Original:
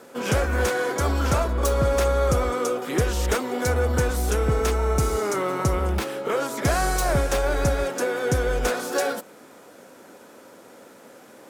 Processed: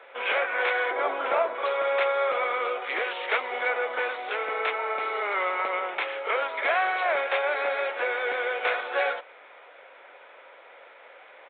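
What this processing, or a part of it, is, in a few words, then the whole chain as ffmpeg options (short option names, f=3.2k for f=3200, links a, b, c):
musical greeting card: -filter_complex "[0:a]aresample=8000,aresample=44100,highpass=f=550:w=0.5412,highpass=f=550:w=1.3066,equalizer=f=2.2k:t=o:w=0.45:g=9.5,asettb=1/sr,asplit=3[a][b][c];[a]atrim=end=0.914[d];[b]atrim=start=0.91:end=1.55,asetpts=PTS-STARTPTS,afade=t=in:d=0.004:c=qsin,afade=t=out:st=0.636:d=0.004:c=qsin,tiltshelf=f=1.1k:g=7[e];[c]atrim=start=1.546[f];[d][e]acrossfade=d=0.004:c1=hsin:c2=qsin[g];[g][f]acrossfade=d=0.004:c1=qsin:c2=hsin"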